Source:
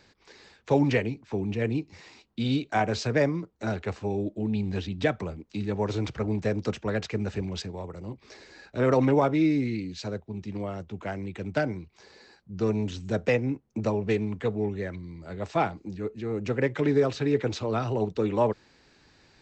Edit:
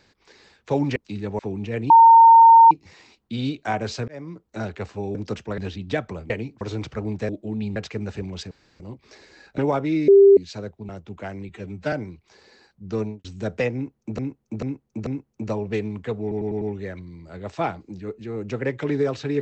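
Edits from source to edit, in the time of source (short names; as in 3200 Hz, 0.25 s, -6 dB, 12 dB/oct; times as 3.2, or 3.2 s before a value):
0.96–1.27 swap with 5.41–5.84
1.78 add tone 914 Hz -6.5 dBFS 0.81 s
3.15–3.55 fade in
4.22–4.69 swap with 6.52–6.95
7.7–7.99 room tone
8.77–9.07 cut
9.57–9.86 bleep 396 Hz -7.5 dBFS
10.38–10.72 cut
11.32–11.61 stretch 1.5×
12.68–12.93 studio fade out
13.43–13.87 loop, 4 plays
14.58 stutter 0.10 s, 5 plays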